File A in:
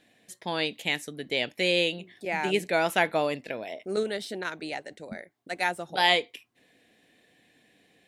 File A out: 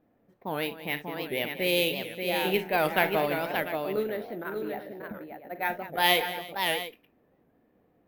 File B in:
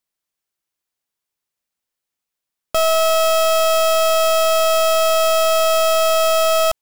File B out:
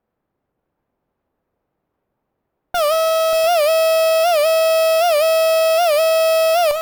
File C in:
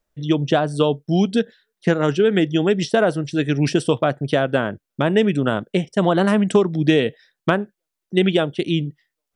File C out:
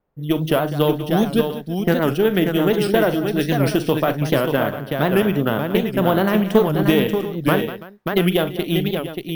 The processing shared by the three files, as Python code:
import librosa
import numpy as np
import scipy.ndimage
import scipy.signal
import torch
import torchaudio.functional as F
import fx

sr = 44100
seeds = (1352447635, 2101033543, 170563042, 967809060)

p1 = fx.quant_dither(x, sr, seeds[0], bits=10, dither='triangular')
p2 = fx.env_lowpass(p1, sr, base_hz=680.0, full_db=-16.5)
p3 = fx.cheby_harmonics(p2, sr, harmonics=(6,), levels_db=(-26,), full_scale_db=-0.5)
p4 = p3 + fx.echo_multitap(p3, sr, ms=(42, 62, 194, 331, 584, 695), db=(-12.5, -18.5, -14.5, -20.0, -5.5, -13.0), dry=0)
p5 = np.repeat(scipy.signal.resample_poly(p4, 1, 3), 3)[:len(p4)]
p6 = fx.record_warp(p5, sr, rpm=78.0, depth_cents=160.0)
y = F.gain(torch.from_numpy(p6), -1.5).numpy()